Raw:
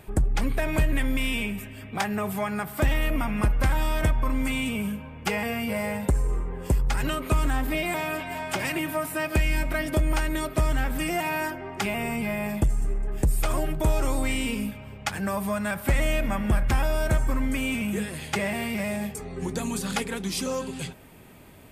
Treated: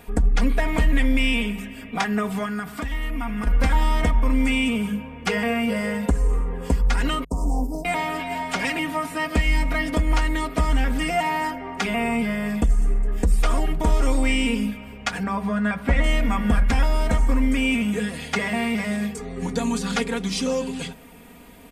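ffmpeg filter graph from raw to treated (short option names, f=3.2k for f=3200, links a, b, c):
-filter_complex "[0:a]asettb=1/sr,asplit=3[a][b][c];[a]atrim=end=2.454[d];[b]atrim=start=2.45:end=3.47,asetpts=PTS-STARTPTS,afade=t=in:d=0.004:c=qsin,afade=t=out:st=1.016:d=0.004:c=qsin,equalizer=f=540:t=o:w=0.33:g=-7.5,acompressor=threshold=-29dB:ratio=4:attack=3.2:release=140:knee=1:detection=peak[e];[c]atrim=start=3.466[f];[d][e]acrossfade=d=0.004:c1=hsin:c2=qsin[g];[g][f]acrossfade=d=0.004:c1=qsin:c2=hsin,asettb=1/sr,asplit=3[h][i][j];[h]atrim=end=7.244[k];[i]atrim=start=7.24:end=7.85,asetpts=PTS-STARTPTS,afade=t=in:d=0.004:c=qsin,afade=t=out:st=0.606:d=0.004:c=qsin,agate=range=-43dB:threshold=-27dB:ratio=16:release=100:detection=peak,asoftclip=type=hard:threshold=-22.5dB,asuperstop=centerf=2300:order=12:qfactor=0.53[l];[j]atrim=start=7.846[m];[k][l]acrossfade=d=0.004:c1=hsin:c2=qsin[n];[n][m]acrossfade=d=0.004:c1=qsin:c2=hsin,asettb=1/sr,asplit=3[o][p][q];[o]atrim=end=15.234[r];[p]atrim=start=15.23:end=16.04,asetpts=PTS-STARTPTS,afade=t=in:d=0.004:c=qsin,afade=t=out:st=0.806:d=0.004:c=qsin,lowpass=f=3.9k:p=1,aemphasis=mode=reproduction:type=50fm,asplit=2[s][t];[t]adelay=14,volume=-12dB[u];[s][u]amix=inputs=2:normalize=0,atrim=end_sample=35721[v];[q]atrim=start=16.036[w];[r][v]acrossfade=d=0.004:c1=hsin:c2=qsin[x];[x][w]acrossfade=d=0.004:c1=qsin:c2=hsin,bandreject=f=50:t=h:w=6,bandreject=f=100:t=h:w=6,bandreject=f=150:t=h:w=6,bandreject=f=200:t=h:w=6,acrossover=split=8000[y][z];[z]acompressor=threshold=-57dB:ratio=4:attack=1:release=60[aa];[y][aa]amix=inputs=2:normalize=0,aecho=1:1:4.2:0.82,volume=2dB"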